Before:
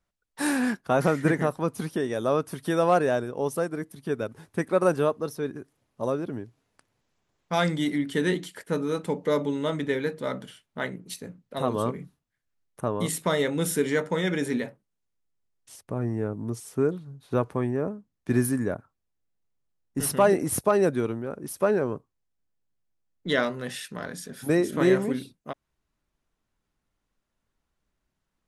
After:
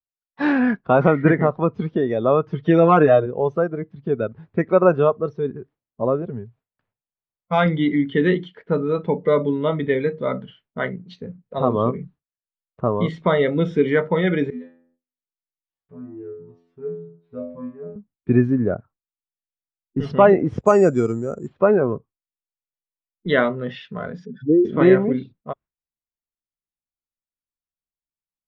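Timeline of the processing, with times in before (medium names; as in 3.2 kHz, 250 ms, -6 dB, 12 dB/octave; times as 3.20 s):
2.46–3.26 s: comb 6.5 ms, depth 82%
6.22–7.66 s: peaking EQ 310 Hz -14.5 dB 0.35 oct
14.50–17.96 s: inharmonic resonator 83 Hz, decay 0.8 s, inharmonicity 0.002
20.59–21.58 s: careless resampling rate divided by 6×, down filtered, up zero stuff
24.25–24.65 s: spectral contrast enhancement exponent 2.7
whole clip: Bessel low-pass 2.3 kHz, order 6; gate with hold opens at -55 dBFS; spectral noise reduction 11 dB; trim +7.5 dB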